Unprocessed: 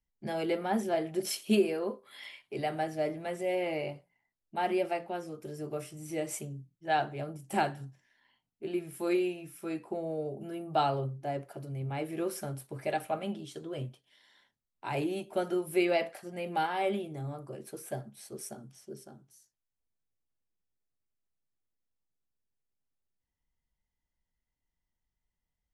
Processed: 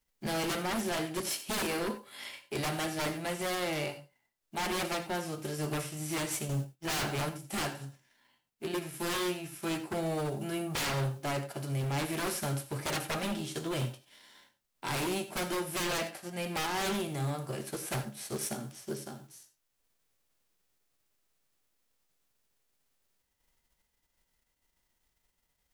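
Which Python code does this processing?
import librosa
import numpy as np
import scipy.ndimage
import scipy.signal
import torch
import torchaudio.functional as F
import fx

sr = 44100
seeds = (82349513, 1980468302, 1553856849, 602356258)

y = fx.envelope_flatten(x, sr, power=0.6)
y = fx.leveller(y, sr, passes=2, at=(6.49, 7.29))
y = fx.rider(y, sr, range_db=5, speed_s=2.0)
y = 10.0 ** (-29.5 / 20.0) * (np.abs((y / 10.0 ** (-29.5 / 20.0) + 3.0) % 4.0 - 2.0) - 1.0)
y = fx.rev_gated(y, sr, seeds[0], gate_ms=110, shape='rising', drr_db=12.0)
y = y * 10.0 ** (2.0 / 20.0)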